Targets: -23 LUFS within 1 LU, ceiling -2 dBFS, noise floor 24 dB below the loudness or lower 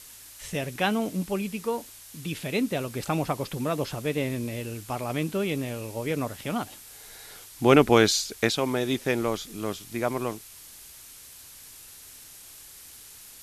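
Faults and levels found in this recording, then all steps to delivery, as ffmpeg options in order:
noise floor -48 dBFS; noise floor target -52 dBFS; loudness -27.5 LUFS; peak -4.5 dBFS; loudness target -23.0 LUFS
-> -af "afftdn=nr=6:nf=-48"
-af "volume=4.5dB,alimiter=limit=-2dB:level=0:latency=1"

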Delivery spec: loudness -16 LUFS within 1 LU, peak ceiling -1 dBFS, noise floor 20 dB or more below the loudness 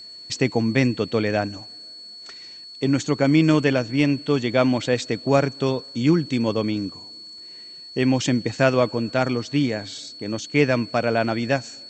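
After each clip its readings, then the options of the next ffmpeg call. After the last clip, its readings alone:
steady tone 4400 Hz; tone level -38 dBFS; loudness -22.0 LUFS; peak -3.5 dBFS; loudness target -16.0 LUFS
-> -af "bandreject=f=4.4k:w=30"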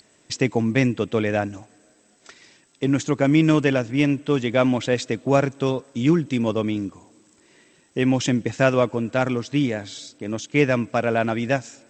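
steady tone none; loudness -22.0 LUFS; peak -3.5 dBFS; loudness target -16.0 LUFS
-> -af "volume=6dB,alimiter=limit=-1dB:level=0:latency=1"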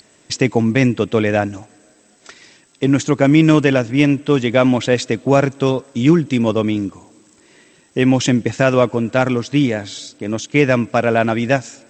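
loudness -16.5 LUFS; peak -1.0 dBFS; noise floor -53 dBFS

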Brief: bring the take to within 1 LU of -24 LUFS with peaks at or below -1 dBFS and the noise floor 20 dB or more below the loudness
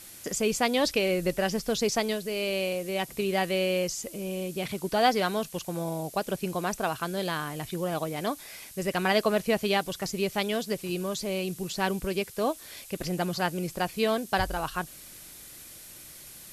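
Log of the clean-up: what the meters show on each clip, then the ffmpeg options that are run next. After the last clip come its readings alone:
noise floor -47 dBFS; noise floor target -49 dBFS; loudness -29.0 LUFS; peak -11.0 dBFS; loudness target -24.0 LUFS
-> -af "afftdn=nr=6:nf=-47"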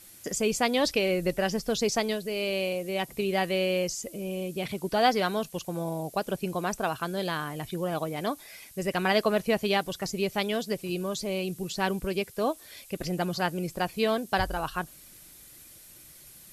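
noise floor -51 dBFS; loudness -29.0 LUFS; peak -11.0 dBFS; loudness target -24.0 LUFS
-> -af "volume=5dB"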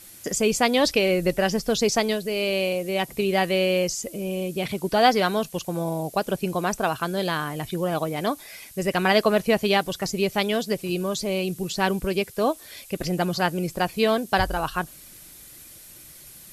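loudness -24.0 LUFS; peak -6.0 dBFS; noise floor -46 dBFS

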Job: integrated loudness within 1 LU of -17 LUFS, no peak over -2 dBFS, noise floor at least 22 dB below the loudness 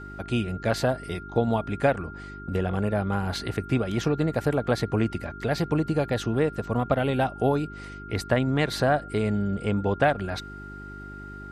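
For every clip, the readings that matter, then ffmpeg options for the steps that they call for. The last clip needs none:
hum 50 Hz; harmonics up to 400 Hz; hum level -43 dBFS; steady tone 1400 Hz; tone level -41 dBFS; loudness -26.5 LUFS; peak -8.5 dBFS; loudness target -17.0 LUFS
-> -af "bandreject=f=50:t=h:w=4,bandreject=f=100:t=h:w=4,bandreject=f=150:t=h:w=4,bandreject=f=200:t=h:w=4,bandreject=f=250:t=h:w=4,bandreject=f=300:t=h:w=4,bandreject=f=350:t=h:w=4,bandreject=f=400:t=h:w=4"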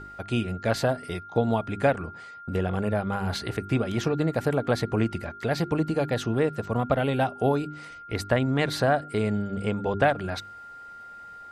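hum none; steady tone 1400 Hz; tone level -41 dBFS
-> -af "bandreject=f=1.4k:w=30"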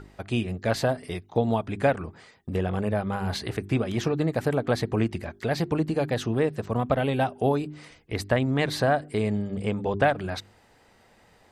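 steady tone none; loudness -27.0 LUFS; peak -8.5 dBFS; loudness target -17.0 LUFS
-> -af "volume=10dB,alimiter=limit=-2dB:level=0:latency=1"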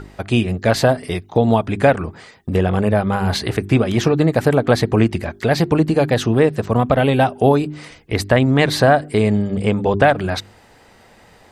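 loudness -17.0 LUFS; peak -2.0 dBFS; noise floor -49 dBFS

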